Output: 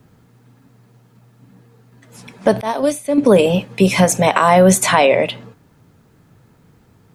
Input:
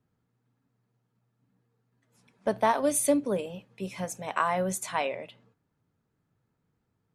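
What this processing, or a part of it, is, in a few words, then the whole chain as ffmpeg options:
mastering chain: -filter_complex "[0:a]equalizer=frequency=1300:width_type=o:width=0.77:gain=-1.5,acrossover=split=720|3100[link_01][link_02][link_03];[link_01]acompressor=threshold=-27dB:ratio=4[link_04];[link_02]acompressor=threshold=-34dB:ratio=4[link_05];[link_03]acompressor=threshold=-40dB:ratio=4[link_06];[link_04][link_05][link_06]amix=inputs=3:normalize=0,acompressor=threshold=-33dB:ratio=2,alimiter=level_in=26dB:limit=-1dB:release=50:level=0:latency=1,asettb=1/sr,asplit=3[link_07][link_08][link_09];[link_07]atrim=end=2.614[link_10];[link_08]atrim=start=2.61:end=3.18,asetpts=PTS-STARTPTS,afade=type=in:duration=0.004:curve=qsin,afade=type=out:start_time=0.566:duration=0.004:curve=qsin,agate=range=-33dB:threshold=-2dB:ratio=3:detection=peak[link_11];[link_09]atrim=start=3.176[link_12];[link_10][link_11]acrossfade=duration=0.004:curve1=hsin:curve2=qsin[link_13];[link_13][link_12]acrossfade=duration=0.004:curve1=qsin:curve2=hsin,volume=-1dB"

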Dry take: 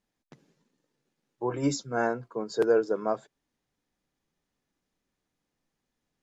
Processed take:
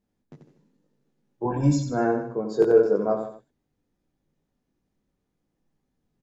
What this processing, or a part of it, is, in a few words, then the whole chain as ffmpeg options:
slapback doubling: -filter_complex "[0:a]asettb=1/sr,asplit=3[link_01][link_02][link_03];[link_01]atrim=end=1.454[link_04];[link_02]atrim=start=1.45:end=1.9,asetpts=PTS-STARTPTS,afade=type=in:duration=0.004:curve=qsin,afade=type=out:start_time=0.446:duration=0.004:curve=qsin,aecho=1:1:1.2:0.85,atrim=end_sample=19845[link_05];[link_03]atrim=start=1.896[link_06];[link_04][link_05]acrossfade=duration=0.004:curve1=hsin:curve2=qsin[link_07];[link_07][link_06]acrossfade=duration=0.004:curve1=qsin:curve2=hsin,tiltshelf=frequency=710:gain=7,aecho=1:1:153:0.2,asplit=3[link_08][link_09][link_10];[link_09]adelay=20,volume=-3.5dB[link_11];[link_10]adelay=89,volume=-6dB[link_12];[link_08][link_11][link_12]amix=inputs=3:normalize=0"

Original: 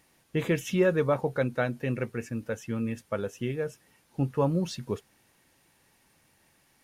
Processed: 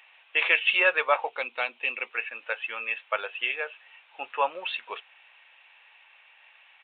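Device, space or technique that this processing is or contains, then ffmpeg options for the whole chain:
musical greeting card: -filter_complex "[0:a]asettb=1/sr,asplit=3[link_01][link_02][link_03];[link_01]atrim=end=1.294[link_04];[link_02]atrim=start=1.29:end=2.11,asetpts=PTS-STARTPTS,afade=type=in:duration=0.004:curve=qsin,afade=type=out:start_time=0.816:duration=0.004:curve=qsin,equalizer=frequency=250:width_type=o:width=0.67:gain=5,equalizer=frequency=630:width_type=o:width=0.67:gain=-8,equalizer=frequency=1600:width_type=o:width=0.67:gain=-12[link_05];[link_03]atrim=start=2.106[link_06];[link_04][link_05]acrossfade=duration=0.004:curve1=hsin:curve2=qsin[link_07];[link_07][link_06]acrossfade=duration=0.004:curve1=qsin:curve2=hsin,aresample=8000,aresample=44100,highpass=frequency=730:width=0.5412,highpass=frequency=730:width=1.3066,equalizer=frequency=2600:width_type=o:width=0.47:gain=11.5,volume=8.5dB"

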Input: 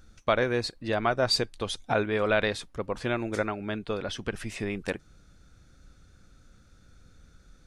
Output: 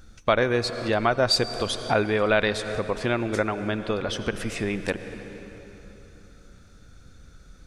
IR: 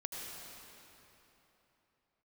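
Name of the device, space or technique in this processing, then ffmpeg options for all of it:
ducked reverb: -filter_complex "[0:a]asplit=3[link_01][link_02][link_03];[1:a]atrim=start_sample=2205[link_04];[link_02][link_04]afir=irnorm=-1:irlink=0[link_05];[link_03]apad=whole_len=337816[link_06];[link_05][link_06]sidechaincompress=threshold=-31dB:ratio=4:attack=16:release=277,volume=-4.5dB[link_07];[link_01][link_07]amix=inputs=2:normalize=0,volume=2.5dB"

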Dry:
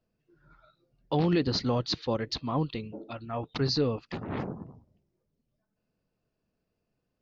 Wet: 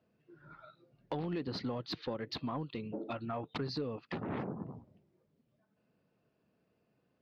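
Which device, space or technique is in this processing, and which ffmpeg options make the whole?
AM radio: -af "highpass=120,lowpass=3300,acompressor=threshold=-41dB:ratio=5,asoftclip=type=tanh:threshold=-32dB,volume=6dB"

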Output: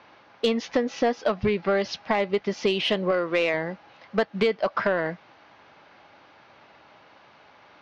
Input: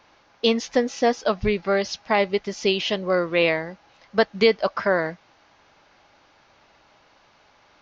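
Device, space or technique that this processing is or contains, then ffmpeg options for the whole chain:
AM radio: -filter_complex "[0:a]asettb=1/sr,asplit=3[link_01][link_02][link_03];[link_01]atrim=end=3.114[link_04];[link_02]atrim=start=3.11:end=3.54,asetpts=PTS-STARTPTS,afade=type=in:duration=0.004:curve=qsin,afade=type=out:start_time=0.426:duration=0.004:curve=qsin,lowshelf=frequency=170:gain=-11.5[link_05];[link_03]atrim=start=3.536[link_06];[link_04][link_05]acrossfade=duration=0.004:curve1=hsin:curve2=qsin[link_07];[link_07][link_06]acrossfade=duration=0.004:curve1=qsin:curve2=hsin,highpass=100,lowpass=3500,acompressor=threshold=-23dB:ratio=5,asoftclip=type=tanh:threshold=-16.5dB,volume=4.5dB"

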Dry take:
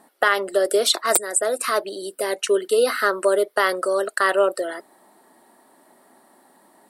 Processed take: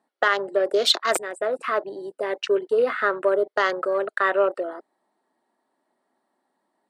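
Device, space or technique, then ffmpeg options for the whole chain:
over-cleaned archive recording: -filter_complex "[0:a]asettb=1/sr,asplit=3[link_01][link_02][link_03];[link_01]atrim=end=0.704[link_04];[link_02]atrim=start=0.7:end=1.28,asetpts=PTS-STARTPTS,afade=type=in:duration=0.004:curve=qsin,afade=type=out:start_time=0.576:duration=0.004:curve=qsin,adynamicequalizer=threshold=0.0251:dfrequency=3100:dqfactor=0.84:tfrequency=3100:tqfactor=0.84:attack=5:release=100:ratio=0.375:range=2.5:mode=boostabove:tftype=bell[link_05];[link_03]atrim=start=1.276[link_06];[link_04][link_05]acrossfade=duration=0.004:curve1=hsin:curve2=qsin[link_07];[link_07][link_06]acrossfade=duration=0.004:curve1=qsin:curve2=hsin,highpass=140,lowpass=6000,afwtdn=0.0251,volume=-2dB"

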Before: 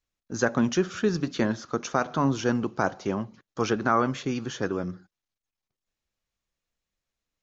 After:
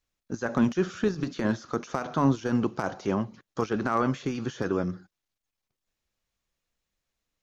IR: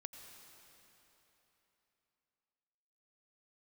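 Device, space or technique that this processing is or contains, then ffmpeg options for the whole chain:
de-esser from a sidechain: -filter_complex "[0:a]asplit=2[link_01][link_02];[link_02]highpass=4800,apad=whole_len=327580[link_03];[link_01][link_03]sidechaincompress=threshold=-48dB:ratio=12:attack=0.95:release=38,volume=2.5dB"

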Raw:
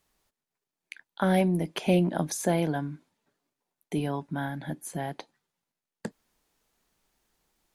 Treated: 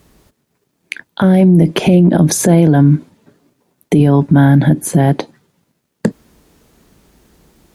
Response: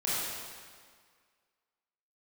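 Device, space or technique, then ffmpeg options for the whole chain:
mastering chain: -af "highpass=50,equalizer=frequency=800:width_type=o:width=0.71:gain=-3.5,acompressor=threshold=-30dB:ratio=2,tiltshelf=frequency=640:gain=7,alimiter=level_in=26dB:limit=-1dB:release=50:level=0:latency=1,volume=-1dB"

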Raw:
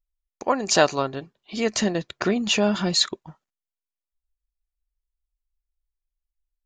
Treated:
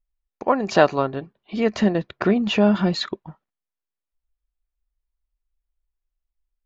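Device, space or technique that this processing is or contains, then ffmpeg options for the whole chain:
phone in a pocket: -af "lowpass=3700,equalizer=frequency=200:width_type=o:width=0.21:gain=3,highshelf=frequency=2500:gain=-8.5,volume=3.5dB"

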